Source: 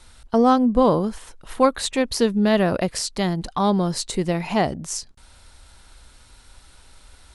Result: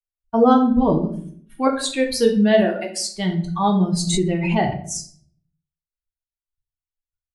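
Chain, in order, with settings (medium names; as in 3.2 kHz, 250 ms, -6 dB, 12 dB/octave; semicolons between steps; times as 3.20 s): expander on every frequency bin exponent 2; expander -52 dBFS; 0.70–1.67 s: comb of notches 510 Hz; 2.60–3.11 s: high-pass 270 Hz -> 630 Hz 24 dB/octave; simulated room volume 73 m³, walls mixed, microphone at 0.61 m; 4.07–4.77 s: swell ahead of each attack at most 31 dB/s; trim +3 dB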